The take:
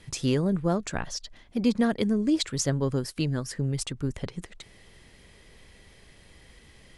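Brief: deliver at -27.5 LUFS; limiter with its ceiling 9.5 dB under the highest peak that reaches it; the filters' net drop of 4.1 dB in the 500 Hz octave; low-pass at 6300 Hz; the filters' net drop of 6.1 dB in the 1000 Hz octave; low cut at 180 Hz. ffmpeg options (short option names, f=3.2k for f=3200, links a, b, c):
-af "highpass=180,lowpass=6.3k,equalizer=f=500:t=o:g=-3.5,equalizer=f=1k:t=o:g=-7.5,volume=6.5dB,alimiter=limit=-17dB:level=0:latency=1"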